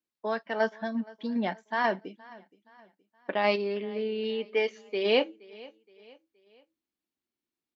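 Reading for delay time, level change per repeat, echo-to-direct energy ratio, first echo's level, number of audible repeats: 471 ms, -7.5 dB, -21.0 dB, -22.0 dB, 2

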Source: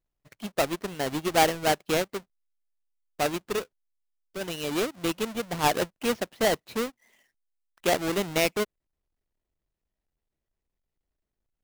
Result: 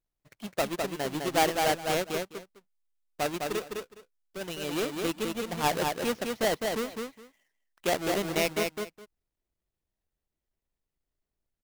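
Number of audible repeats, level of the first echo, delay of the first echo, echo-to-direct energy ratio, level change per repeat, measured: 2, -4.0 dB, 207 ms, -4.0 dB, -15.5 dB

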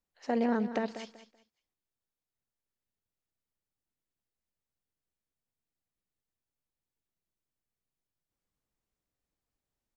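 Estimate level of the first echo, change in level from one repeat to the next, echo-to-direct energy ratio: -12.0 dB, -12.5 dB, -11.5 dB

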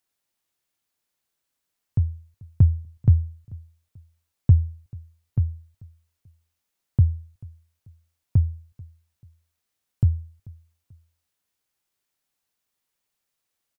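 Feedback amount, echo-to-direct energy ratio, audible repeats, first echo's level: 35%, -23.0 dB, 2, -23.5 dB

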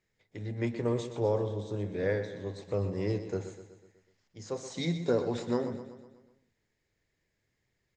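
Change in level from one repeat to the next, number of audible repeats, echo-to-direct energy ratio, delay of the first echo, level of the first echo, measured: -5.5 dB, 5, -9.5 dB, 124 ms, -11.0 dB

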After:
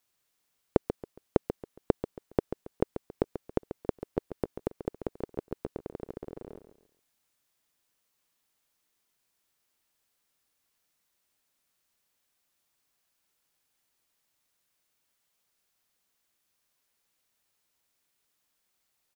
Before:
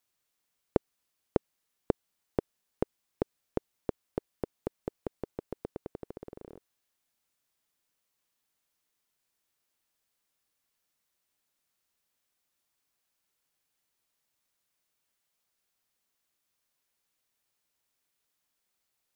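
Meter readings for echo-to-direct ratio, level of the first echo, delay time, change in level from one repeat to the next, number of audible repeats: -10.0 dB, -10.5 dB, 138 ms, -10.0 dB, 3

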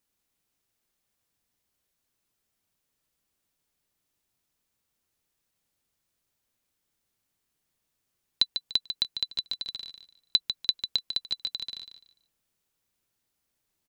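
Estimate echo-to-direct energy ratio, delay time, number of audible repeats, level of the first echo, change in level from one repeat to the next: -8.0 dB, 147 ms, 3, -8.5 dB, -12.0 dB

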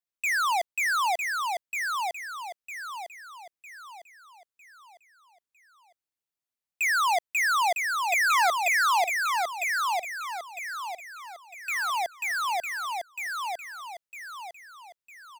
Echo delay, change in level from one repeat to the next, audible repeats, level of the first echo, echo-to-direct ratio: 954 ms, -8.0 dB, 4, -4.0 dB, -3.0 dB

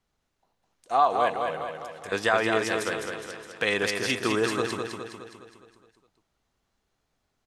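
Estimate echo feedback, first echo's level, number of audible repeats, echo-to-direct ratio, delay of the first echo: 53%, -5.0 dB, 6, -3.5 dB, 207 ms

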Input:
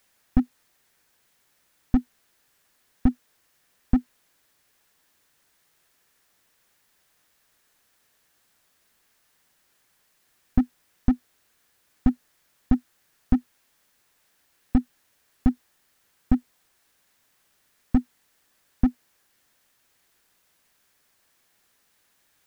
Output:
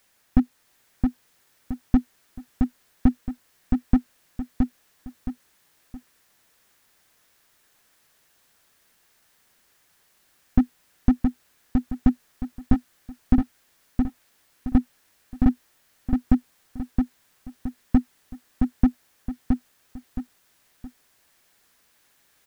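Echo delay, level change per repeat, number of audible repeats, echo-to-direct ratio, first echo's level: 669 ms, -9.0 dB, 3, -3.5 dB, -4.0 dB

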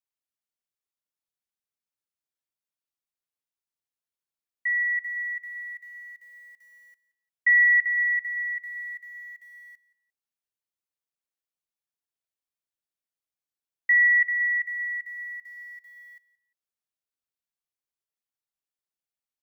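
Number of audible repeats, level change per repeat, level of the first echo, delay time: 2, -13.5 dB, -19.0 dB, 175 ms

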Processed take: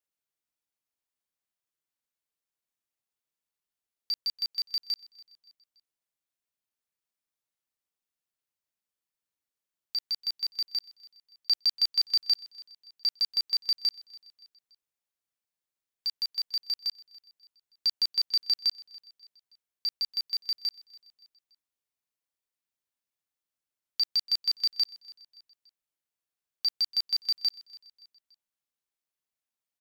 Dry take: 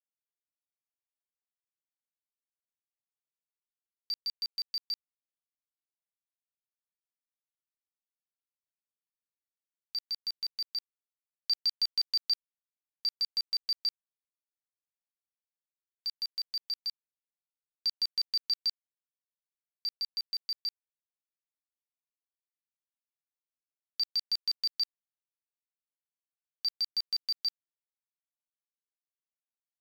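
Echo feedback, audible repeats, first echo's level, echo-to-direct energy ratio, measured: 44%, 2, -21.0 dB, -20.0 dB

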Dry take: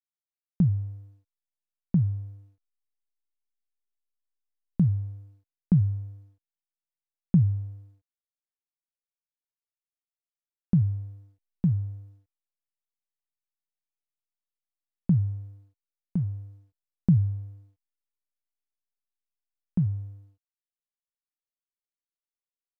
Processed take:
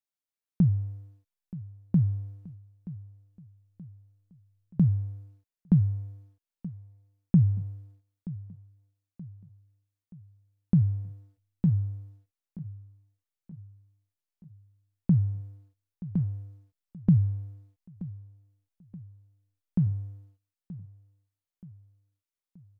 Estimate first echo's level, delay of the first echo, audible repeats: -17.0 dB, 927 ms, 3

